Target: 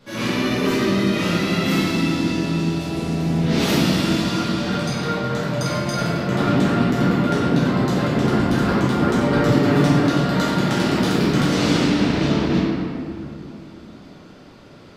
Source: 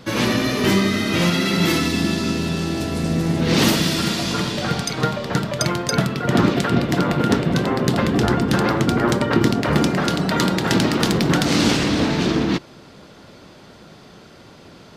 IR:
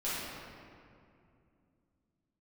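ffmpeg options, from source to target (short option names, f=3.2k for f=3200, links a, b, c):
-filter_complex "[0:a]asettb=1/sr,asplit=3[a][b][c];[a]atrim=end=9.254[d];[b]atrim=start=9.25:end=9.92,asetpts=PTS-STARTPTS,afade=t=in:d=0.004:c=qsin,afade=t=out:st=0.666:d=0.004:c=qsin,aecho=1:1:6.9:0.69,atrim=end_sample=29547[e];[c]atrim=start=9.916[f];[d][e]acrossfade=d=0.004:c1=hsin:c2=qsin[g];[g][f]acrossfade=d=0.004:c1=qsin:c2=hsin[h];[1:a]atrim=start_sample=2205[i];[h][i]afir=irnorm=-1:irlink=0,volume=-8dB"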